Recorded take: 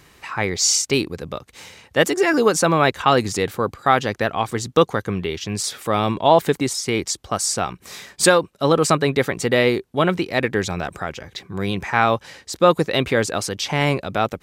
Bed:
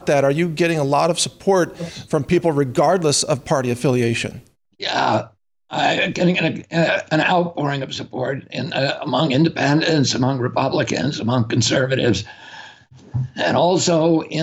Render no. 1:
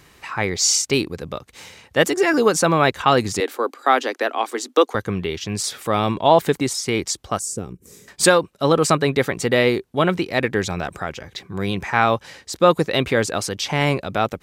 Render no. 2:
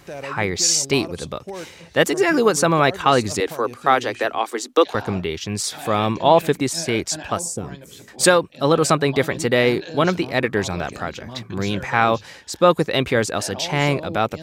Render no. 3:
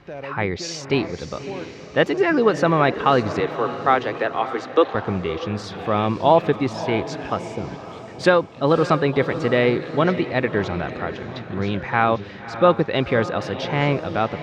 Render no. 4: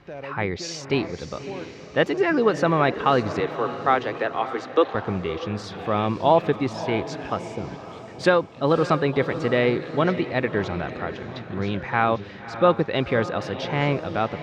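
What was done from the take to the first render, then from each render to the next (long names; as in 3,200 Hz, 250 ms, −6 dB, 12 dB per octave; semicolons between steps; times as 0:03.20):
0:03.40–0:04.95: Butterworth high-pass 250 Hz 72 dB per octave; 0:07.39–0:08.08: drawn EQ curve 470 Hz 0 dB, 670 Hz −19 dB, 4,100 Hz −19 dB, 7,200 Hz −4 dB
mix in bed −17.5 dB
high-frequency loss of the air 250 metres; feedback delay with all-pass diffusion 585 ms, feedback 45%, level −12 dB
level −2.5 dB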